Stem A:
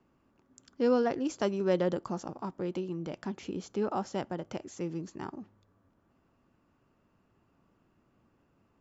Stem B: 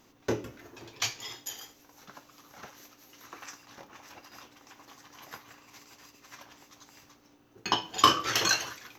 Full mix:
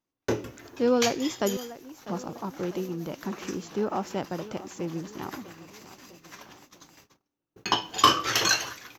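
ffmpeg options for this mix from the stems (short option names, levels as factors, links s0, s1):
-filter_complex "[0:a]volume=1.41,asplit=3[s0][s1][s2];[s0]atrim=end=1.57,asetpts=PTS-STARTPTS,afade=t=out:st=1.566:d=0.004:c=hsin[s3];[s1]atrim=start=1.57:end=2.08,asetpts=PTS-STARTPTS,volume=0[s4];[s2]atrim=start=2.08,asetpts=PTS-STARTPTS,afade=t=in:d=0.004:c=hsin[s5];[s3][s4][s5]concat=n=3:v=0:a=1,asplit=2[s6][s7];[s7]volume=0.158[s8];[1:a]acontrast=46,volume=0.708[s9];[s8]aecho=0:1:648|1296|1944|2592|3240|3888|4536|5184:1|0.54|0.292|0.157|0.085|0.0459|0.0248|0.0134[s10];[s6][s9][s10]amix=inputs=3:normalize=0,agate=range=0.0316:threshold=0.00282:ratio=16:detection=peak"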